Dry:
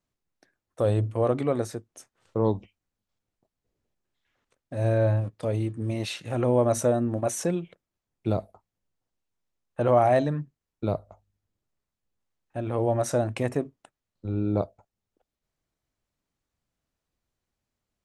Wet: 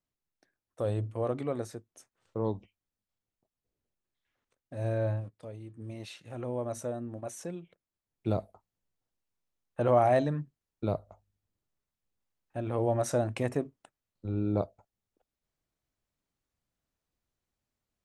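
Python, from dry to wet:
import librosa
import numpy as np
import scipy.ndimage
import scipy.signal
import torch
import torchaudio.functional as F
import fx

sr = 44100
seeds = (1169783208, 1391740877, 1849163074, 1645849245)

y = fx.gain(x, sr, db=fx.line((5.11, -7.5), (5.6, -18.5), (5.8, -12.5), (7.59, -12.5), (8.32, -3.5)))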